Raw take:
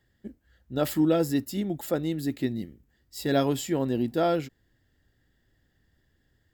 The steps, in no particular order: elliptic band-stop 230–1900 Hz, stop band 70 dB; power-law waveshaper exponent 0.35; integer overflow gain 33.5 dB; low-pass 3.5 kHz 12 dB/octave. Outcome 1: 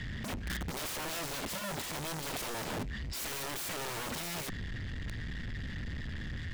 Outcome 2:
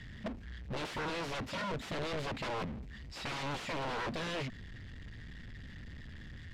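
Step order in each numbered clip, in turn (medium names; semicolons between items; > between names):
elliptic band-stop > power-law waveshaper > low-pass > integer overflow; elliptic band-stop > integer overflow > power-law waveshaper > low-pass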